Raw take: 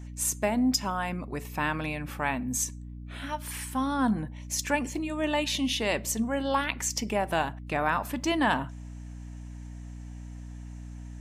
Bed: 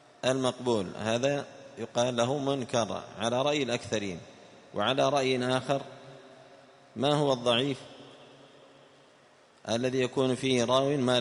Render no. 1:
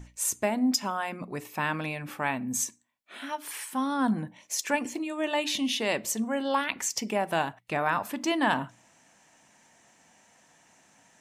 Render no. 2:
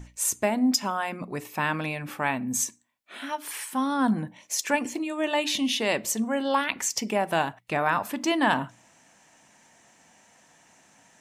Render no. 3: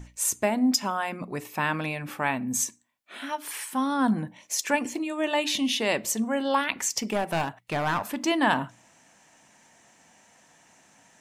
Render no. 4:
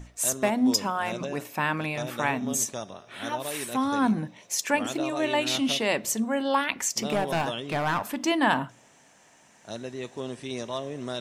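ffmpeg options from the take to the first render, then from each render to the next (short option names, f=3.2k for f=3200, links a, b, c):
-af "bandreject=f=60:t=h:w=6,bandreject=f=120:t=h:w=6,bandreject=f=180:t=h:w=6,bandreject=f=240:t=h:w=6,bandreject=f=300:t=h:w=6"
-af "volume=2.5dB"
-filter_complex "[0:a]asettb=1/sr,asplit=3[a][b][c];[a]atrim=end=7.004[d];[b]atrim=start=7:end=8.17,asetpts=PTS-STARTPTS,afade=t=in:d=0.004:c=qsin,afade=t=out:st=1.166:d=0.004:c=qsin,aeval=exprs='clip(val(0),-1,0.0531)':c=same[e];[c]atrim=start=8.166[f];[d][e]acrossfade=d=0.004:c1=hsin:c2=qsin[g];[g][f]acrossfade=d=0.004:c1=qsin:c2=hsin"
-filter_complex "[1:a]volume=-8dB[a];[0:a][a]amix=inputs=2:normalize=0"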